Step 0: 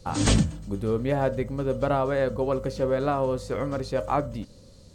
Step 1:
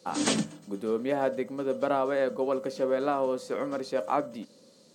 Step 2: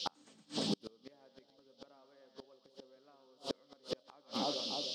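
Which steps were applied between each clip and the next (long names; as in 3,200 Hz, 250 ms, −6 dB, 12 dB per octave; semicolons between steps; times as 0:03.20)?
high-pass filter 210 Hz 24 dB per octave; level −2 dB
echo with a time of its own for lows and highs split 850 Hz, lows 303 ms, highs 115 ms, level −9 dB; noise in a band 3,000–5,400 Hz −40 dBFS; gate with flip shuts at −21 dBFS, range −36 dB; level −1 dB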